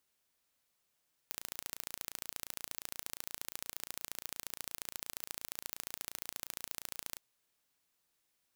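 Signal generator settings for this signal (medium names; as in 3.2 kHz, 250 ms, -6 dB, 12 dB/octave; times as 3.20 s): pulse train 28.5 per s, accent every 2, -11.5 dBFS 5.88 s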